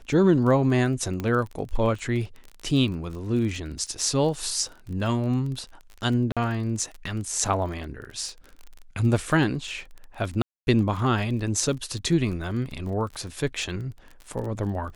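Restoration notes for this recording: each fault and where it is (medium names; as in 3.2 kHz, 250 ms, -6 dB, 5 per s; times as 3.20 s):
crackle 29 per s -33 dBFS
1.20 s: pop -17 dBFS
6.32–6.37 s: dropout 46 ms
10.42–10.67 s: dropout 250 ms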